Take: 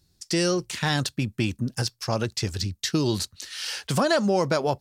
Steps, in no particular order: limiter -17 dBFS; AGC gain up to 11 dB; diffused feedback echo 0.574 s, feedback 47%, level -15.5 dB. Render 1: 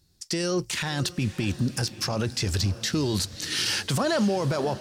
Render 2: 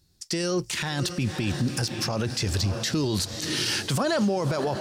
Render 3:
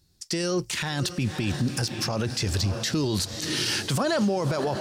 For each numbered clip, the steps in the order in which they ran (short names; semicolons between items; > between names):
AGC > limiter > diffused feedback echo; diffused feedback echo > AGC > limiter; AGC > diffused feedback echo > limiter